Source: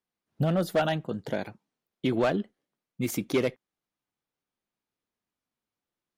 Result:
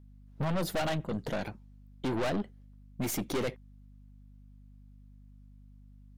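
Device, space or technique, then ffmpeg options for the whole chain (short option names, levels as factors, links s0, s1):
valve amplifier with mains hum: -af "aeval=exprs='(tanh(44.7*val(0)+0.45)-tanh(0.45))/44.7':c=same,aeval=exprs='val(0)+0.00141*(sin(2*PI*50*n/s)+sin(2*PI*2*50*n/s)/2+sin(2*PI*3*50*n/s)/3+sin(2*PI*4*50*n/s)/4+sin(2*PI*5*50*n/s)/5)':c=same,volume=1.68"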